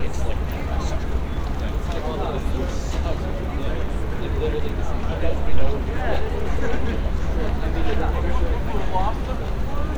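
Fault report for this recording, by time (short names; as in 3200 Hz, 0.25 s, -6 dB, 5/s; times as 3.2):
4.69 gap 3.2 ms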